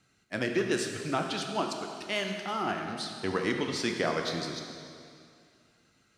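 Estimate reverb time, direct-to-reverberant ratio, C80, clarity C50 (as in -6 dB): 2.4 s, 2.5 dB, 5.5 dB, 4.5 dB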